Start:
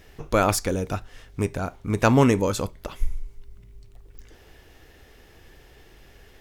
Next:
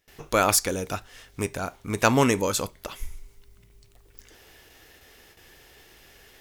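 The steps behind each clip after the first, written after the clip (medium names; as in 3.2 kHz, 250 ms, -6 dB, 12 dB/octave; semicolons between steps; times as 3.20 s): gate with hold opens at -41 dBFS; tilt EQ +2 dB/octave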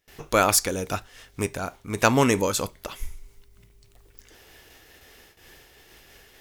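random flutter of the level, depth 55%; trim +3 dB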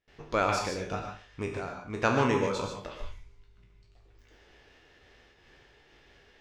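spectral sustain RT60 0.34 s; distance through air 160 m; gated-style reverb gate 170 ms rising, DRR 3.5 dB; trim -7.5 dB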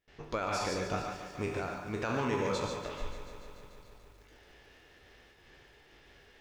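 peak limiter -23 dBFS, peak gain reduction 12 dB; bit-crushed delay 145 ms, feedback 80%, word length 10-bit, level -12 dB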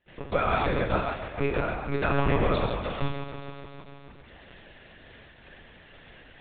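monotone LPC vocoder at 8 kHz 140 Hz; trim +8.5 dB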